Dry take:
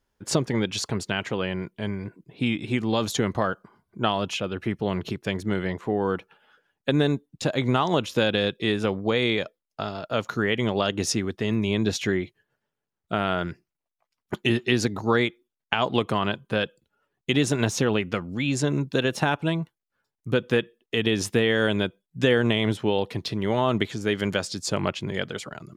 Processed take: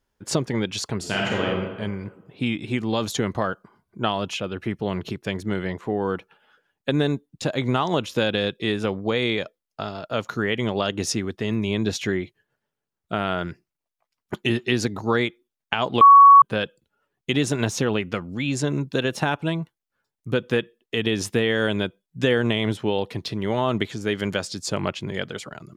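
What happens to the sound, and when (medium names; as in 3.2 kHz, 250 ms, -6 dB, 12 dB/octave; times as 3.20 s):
0.98–1.44 s: reverb throw, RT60 1.4 s, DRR -3.5 dB
16.01–16.42 s: bleep 1.12 kHz -6 dBFS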